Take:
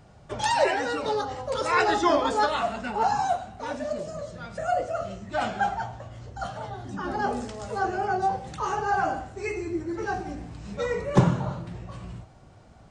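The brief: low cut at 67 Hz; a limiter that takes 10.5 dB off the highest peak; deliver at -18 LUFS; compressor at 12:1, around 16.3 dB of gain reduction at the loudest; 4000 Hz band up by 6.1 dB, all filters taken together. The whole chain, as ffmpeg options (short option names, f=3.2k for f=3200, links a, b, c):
-af "highpass=67,equalizer=f=4k:t=o:g=7.5,acompressor=threshold=-30dB:ratio=12,volume=20dB,alimiter=limit=-9dB:level=0:latency=1"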